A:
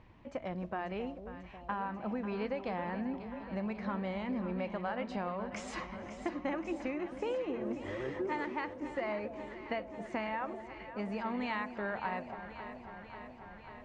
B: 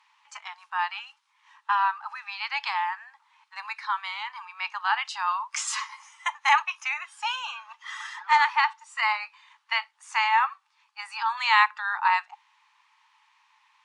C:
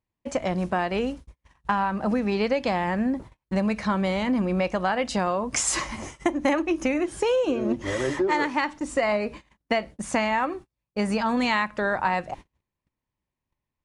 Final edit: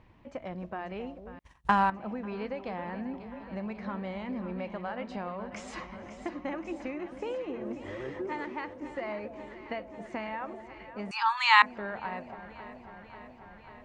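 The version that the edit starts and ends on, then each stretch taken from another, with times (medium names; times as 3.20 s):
A
1.39–1.90 s: from C
11.11–11.62 s: from B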